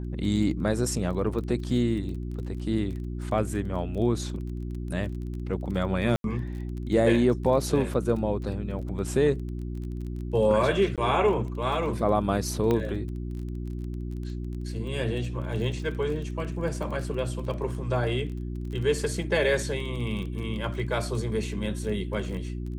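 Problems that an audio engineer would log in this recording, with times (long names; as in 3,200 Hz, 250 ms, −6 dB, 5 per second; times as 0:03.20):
surface crackle 23 per second −35 dBFS
mains hum 60 Hz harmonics 6 −33 dBFS
0:06.16–0:06.24: drop-out 82 ms
0:10.96–0:10.98: drop-out 17 ms
0:12.71: click −14 dBFS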